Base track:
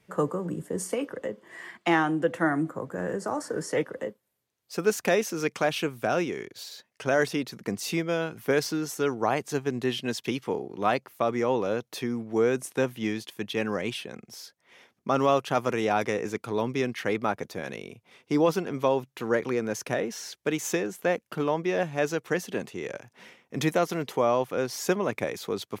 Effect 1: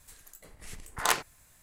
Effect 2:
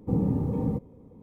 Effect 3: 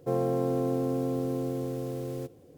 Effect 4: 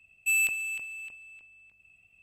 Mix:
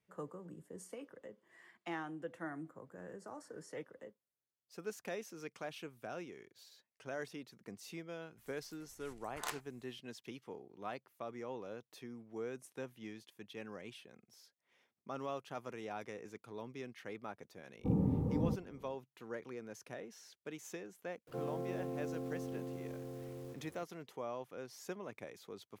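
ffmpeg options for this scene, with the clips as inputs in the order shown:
-filter_complex "[0:a]volume=-19dB[a];[3:a]aeval=exprs='val(0)+0.5*0.00708*sgn(val(0))':c=same[b];[1:a]atrim=end=1.62,asetpts=PTS-STARTPTS,volume=-15.5dB,afade=t=in:d=0.004:c=hsin,afade=t=out:st=1.616:d=0.004:c=hsin,adelay=8380[c];[2:a]atrim=end=1.22,asetpts=PTS-STARTPTS,volume=-7dB,afade=t=in:d=0.1,afade=t=out:st=1.12:d=0.1,adelay=17770[d];[b]atrim=end=2.57,asetpts=PTS-STARTPTS,volume=-13.5dB,afade=t=in:d=0.004:c=hsin,afade=t=out:st=2.566:d=0.004:c=hsin,adelay=21270[e];[a][c][d][e]amix=inputs=4:normalize=0"

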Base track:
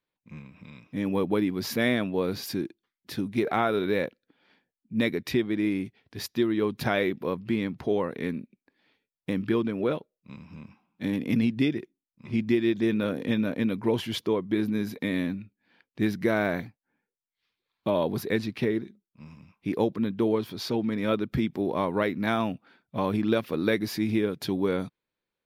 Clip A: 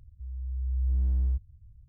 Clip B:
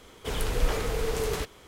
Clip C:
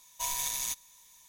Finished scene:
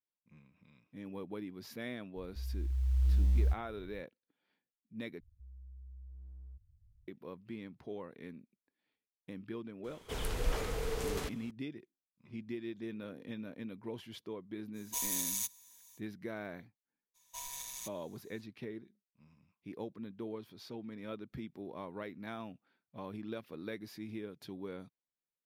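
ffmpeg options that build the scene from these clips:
-filter_complex "[1:a]asplit=2[a][b];[3:a]asplit=2[c][d];[0:a]volume=-17.5dB[e];[a]acrusher=bits=9:mode=log:mix=0:aa=0.000001[f];[b]acompressor=threshold=-36dB:ratio=6:attack=3.2:release=140:knee=1:detection=peak[g];[c]aemphasis=mode=production:type=cd[h];[e]asplit=2[i][j];[i]atrim=end=5.204[k];[g]atrim=end=1.88,asetpts=PTS-STARTPTS,volume=-13dB[l];[j]atrim=start=7.076[m];[f]atrim=end=1.88,asetpts=PTS-STARTPTS,volume=-1.5dB,afade=t=in:d=0.004:c=hsin,afade=t=out:st=1.876:d=0.004:c=hsin,adelay=2160[n];[2:a]atrim=end=1.67,asetpts=PTS-STARTPTS,volume=-7.5dB,afade=t=in:d=0.004:c=hsin,afade=t=out:st=1.666:d=0.004:c=hsin,adelay=9840[o];[h]atrim=end=1.28,asetpts=PTS-STARTPTS,volume=-9dB,afade=t=in:d=0.05,afade=t=out:st=1.23:d=0.05,adelay=14730[p];[d]atrim=end=1.28,asetpts=PTS-STARTPTS,volume=-11.5dB,afade=t=in:d=0.02,afade=t=out:st=1.26:d=0.02,adelay=17140[q];[k][l]acrossfade=d=0.004:c1=hsin:c2=hsin[r];[r][m]acrossfade=d=0.004:c1=hsin:c2=hsin[s];[s][n][o][p][q]amix=inputs=5:normalize=0"

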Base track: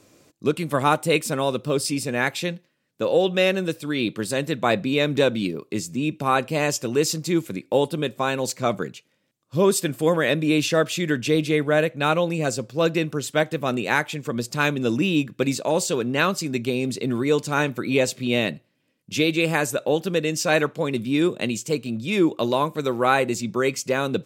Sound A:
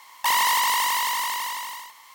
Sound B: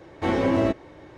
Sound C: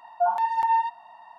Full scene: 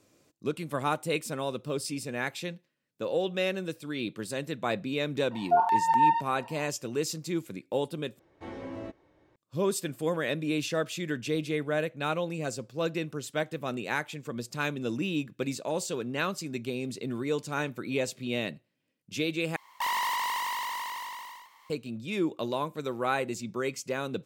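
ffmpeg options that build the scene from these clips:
-filter_complex "[0:a]volume=-9.5dB[a];[1:a]equalizer=f=11k:w=0.31:g=-8.5[b];[a]asplit=3[c][d][e];[c]atrim=end=8.194[f];[2:a]atrim=end=1.17,asetpts=PTS-STARTPTS,volume=-18dB[g];[d]atrim=start=9.356:end=19.564[h];[b]atrim=end=2.14,asetpts=PTS-STARTPTS,volume=-7dB[i];[e]atrim=start=21.696[j];[3:a]atrim=end=1.38,asetpts=PTS-STARTPTS,afade=t=in:d=0.004:c=hsin,afade=t=out:st=1.376:d=0.004:c=hsin,adelay=5310[k];[f][g]acrossfade=d=0.004:c1=hsin:c2=hsin[l];[l][h]acrossfade=d=0.004:c1=hsin:c2=hsin[m];[m][i]acrossfade=d=0.004:c1=hsin:c2=hsin[n];[n][j]acrossfade=d=0.004:c1=hsin:c2=hsin[o];[o][k]amix=inputs=2:normalize=0"

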